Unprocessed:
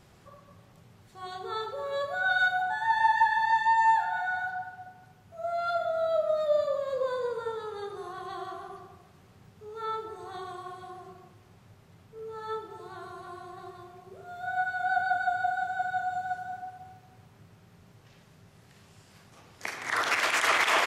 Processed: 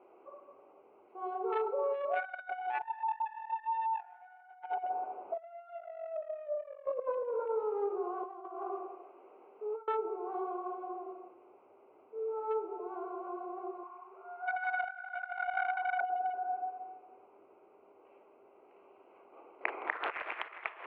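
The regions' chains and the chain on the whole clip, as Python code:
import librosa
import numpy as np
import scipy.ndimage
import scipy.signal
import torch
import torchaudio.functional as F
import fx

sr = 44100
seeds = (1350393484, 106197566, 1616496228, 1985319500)

y = fx.chain(x, sr, fx.peak_eq(hz=700.0, db=10.0, octaves=1.5),
    fx.over_compress(threshold_db=-26.0, ratio=-1.0), at=(2.83, 6.86))
y = fx.chain(y, sr, fx.highpass(hz=280.0, slope=12),
    fx.over_compress(threshold_db=-43.0, ratio=-0.5), at=(8.23, 9.88))
y = fx.chain(y, sr, fx.low_shelf_res(hz=740.0, db=-10.0, q=3.0),
    fx.echo_feedback(ms=63, feedback_pct=50, wet_db=-7.0), at=(13.83, 16.01))
y = fx.wiener(y, sr, points=25)
y = scipy.signal.sosfilt(scipy.signal.ellip(3, 1.0, 40, [350.0, 2600.0], 'bandpass', fs=sr, output='sos'), y)
y = fx.over_compress(y, sr, threshold_db=-36.0, ratio=-0.5)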